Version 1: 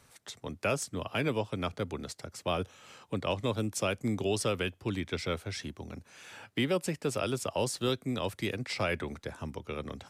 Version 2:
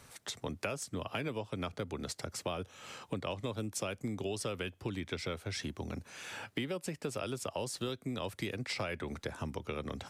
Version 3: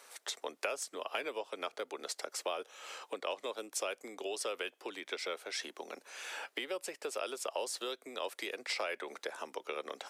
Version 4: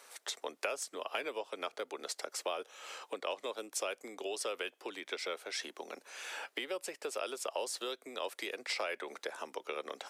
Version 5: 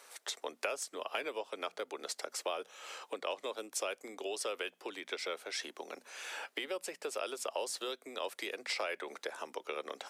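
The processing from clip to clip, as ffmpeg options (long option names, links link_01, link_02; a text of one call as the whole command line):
ffmpeg -i in.wav -af "acompressor=threshold=-39dB:ratio=6,volume=4.5dB" out.wav
ffmpeg -i in.wav -af "highpass=frequency=410:width=0.5412,highpass=frequency=410:width=1.3066,volume=1.5dB" out.wav
ffmpeg -i in.wav -af anull out.wav
ffmpeg -i in.wav -af "bandreject=frequency=60:width_type=h:width=6,bandreject=frequency=120:width_type=h:width=6,bandreject=frequency=180:width_type=h:width=6,bandreject=frequency=240:width_type=h:width=6" out.wav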